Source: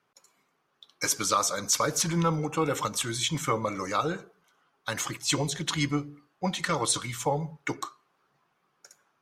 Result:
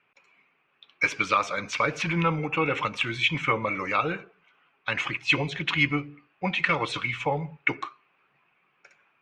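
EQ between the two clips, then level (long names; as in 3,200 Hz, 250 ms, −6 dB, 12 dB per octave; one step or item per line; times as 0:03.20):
low-pass with resonance 2,500 Hz, resonance Q 6.5
0.0 dB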